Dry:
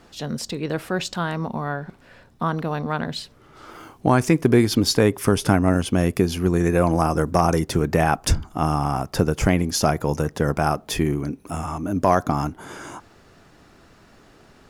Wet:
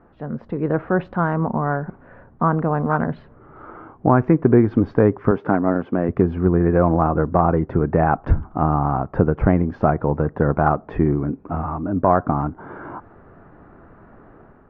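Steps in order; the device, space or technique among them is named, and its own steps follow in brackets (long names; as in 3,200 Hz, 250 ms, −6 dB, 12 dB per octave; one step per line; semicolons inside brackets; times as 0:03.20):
0:05.31–0:06.09: high-pass filter 210 Hz 12 dB per octave
action camera in a waterproof case (low-pass filter 1,500 Hz 24 dB per octave; automatic gain control gain up to 7 dB; level −1 dB; AAC 64 kbit/s 48,000 Hz)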